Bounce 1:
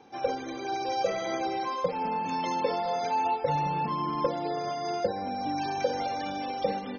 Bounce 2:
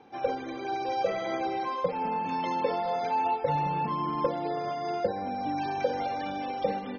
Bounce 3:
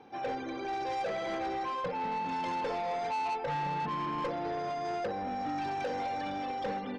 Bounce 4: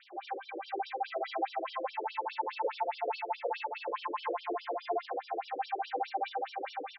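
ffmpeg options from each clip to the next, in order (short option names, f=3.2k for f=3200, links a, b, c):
-af "lowpass=3.7k"
-af "asoftclip=type=tanh:threshold=-30dB"
-af "aecho=1:1:432|864|1296|1728|2160:0.562|0.219|0.0855|0.0334|0.013,acrusher=bits=8:mix=0:aa=0.000001,afftfilt=real='re*between(b*sr/1024,420*pow(4100/420,0.5+0.5*sin(2*PI*4.8*pts/sr))/1.41,420*pow(4100/420,0.5+0.5*sin(2*PI*4.8*pts/sr))*1.41)':imag='im*between(b*sr/1024,420*pow(4100/420,0.5+0.5*sin(2*PI*4.8*pts/sr))/1.41,420*pow(4100/420,0.5+0.5*sin(2*PI*4.8*pts/sr))*1.41)':win_size=1024:overlap=0.75,volume=4dB"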